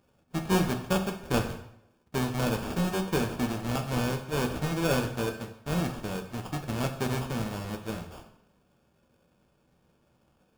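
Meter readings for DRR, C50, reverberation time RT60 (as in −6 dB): 4.0 dB, 9.5 dB, 0.75 s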